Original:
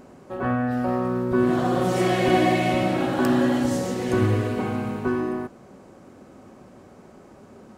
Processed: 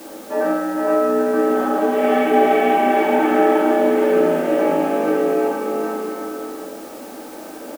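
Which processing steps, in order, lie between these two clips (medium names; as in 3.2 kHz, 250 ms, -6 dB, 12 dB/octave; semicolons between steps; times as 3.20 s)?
in parallel at -2 dB: compressor with a negative ratio -32 dBFS; on the sum: bouncing-ball echo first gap 460 ms, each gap 0.7×, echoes 5; reverberation RT60 0.75 s, pre-delay 3 ms, DRR -5 dB; mistuned SSB +63 Hz 160–3000 Hz; added noise white -39 dBFS; trim -5 dB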